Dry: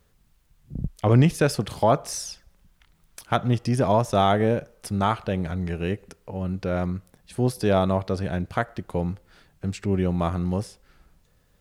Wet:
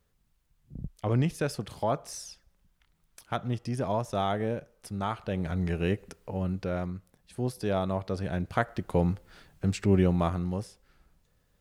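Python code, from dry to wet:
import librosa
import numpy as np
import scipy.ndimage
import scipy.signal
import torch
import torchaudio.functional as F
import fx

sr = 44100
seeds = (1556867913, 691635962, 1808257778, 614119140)

y = fx.gain(x, sr, db=fx.line((5.11, -9.0), (5.6, -1.0), (6.37, -1.0), (6.91, -8.0), (7.85, -8.0), (8.96, 1.0), (9.99, 1.0), (10.53, -6.5)))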